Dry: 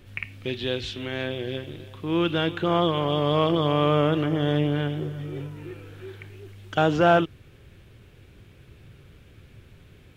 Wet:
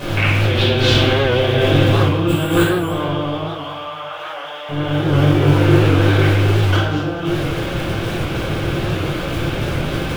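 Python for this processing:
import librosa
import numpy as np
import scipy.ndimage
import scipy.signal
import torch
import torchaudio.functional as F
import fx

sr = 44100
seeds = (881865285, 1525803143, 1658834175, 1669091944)

y = fx.bin_compress(x, sr, power=0.6)
y = fx.dmg_crackle(y, sr, seeds[0], per_s=150.0, level_db=-33.0)
y = fx.over_compress(y, sr, threshold_db=-29.0, ratio=-1.0)
y = y + 10.0 ** (-18.0 / 20.0) * np.pad(y, (int(436 * sr / 1000.0), 0))[:len(y)]
y = fx.resample_bad(y, sr, factor=4, down='none', up='hold', at=(2.27, 2.91))
y = fx.highpass(y, sr, hz=680.0, slope=24, at=(3.44, 4.69))
y = fx.room_shoebox(y, sr, seeds[1], volume_m3=440.0, walls='mixed', distance_m=5.3)
y = fx.record_warp(y, sr, rpm=78.0, depth_cents=100.0)
y = y * 10.0 ** (-2.0 / 20.0)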